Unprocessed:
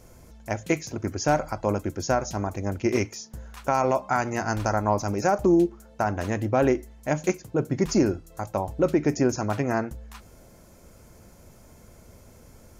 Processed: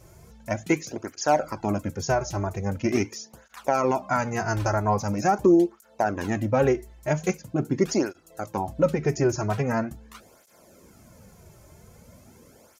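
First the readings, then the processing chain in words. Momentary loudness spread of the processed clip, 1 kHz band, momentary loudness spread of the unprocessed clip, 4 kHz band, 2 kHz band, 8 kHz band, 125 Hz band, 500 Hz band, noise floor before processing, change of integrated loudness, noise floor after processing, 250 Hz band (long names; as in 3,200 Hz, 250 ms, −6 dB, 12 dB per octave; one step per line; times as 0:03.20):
10 LU, +0.5 dB, 10 LU, 0.0 dB, 0.0 dB, 0.0 dB, +1.0 dB, +0.5 dB, −52 dBFS, 0.0 dB, −56 dBFS, 0.0 dB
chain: through-zero flanger with one copy inverted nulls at 0.43 Hz, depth 4.4 ms
level +3 dB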